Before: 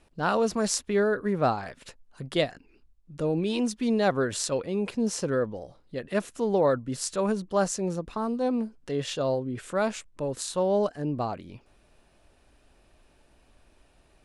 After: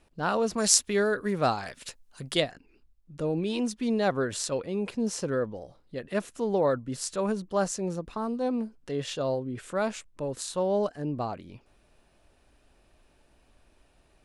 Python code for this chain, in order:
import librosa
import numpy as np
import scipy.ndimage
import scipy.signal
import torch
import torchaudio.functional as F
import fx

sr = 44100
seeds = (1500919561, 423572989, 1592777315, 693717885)

y = fx.high_shelf(x, sr, hz=2600.0, db=11.5, at=(0.58, 2.4))
y = y * librosa.db_to_amplitude(-2.0)